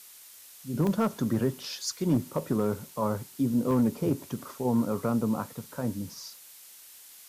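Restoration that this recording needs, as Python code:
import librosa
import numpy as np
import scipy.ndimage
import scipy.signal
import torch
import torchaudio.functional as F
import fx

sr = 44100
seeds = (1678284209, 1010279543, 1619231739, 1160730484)

y = fx.fix_declip(x, sr, threshold_db=-17.5)
y = fx.fix_interpolate(y, sr, at_s=(0.87, 3.71), length_ms=1.2)
y = fx.noise_reduce(y, sr, print_start_s=6.68, print_end_s=7.18, reduce_db=23.0)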